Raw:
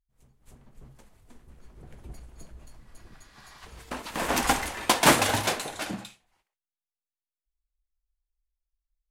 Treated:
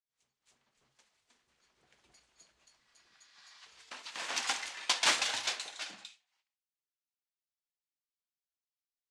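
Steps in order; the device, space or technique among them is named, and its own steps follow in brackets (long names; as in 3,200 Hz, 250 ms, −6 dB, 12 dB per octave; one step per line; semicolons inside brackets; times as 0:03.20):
low-pass filter 5,800 Hz 12 dB per octave
piezo pickup straight into a mixer (low-pass filter 6,400 Hz 12 dB per octave; first difference)
level +4 dB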